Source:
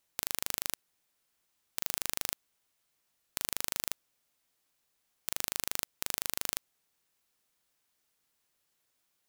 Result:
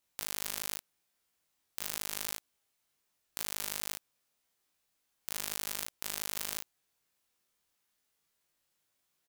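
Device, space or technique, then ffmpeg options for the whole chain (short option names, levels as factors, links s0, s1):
double-tracked vocal: -filter_complex "[0:a]asplit=2[s0][s1];[s1]adelay=34,volume=0.631[s2];[s0][s2]amix=inputs=2:normalize=0,flanger=delay=18.5:depth=2.3:speed=0.86"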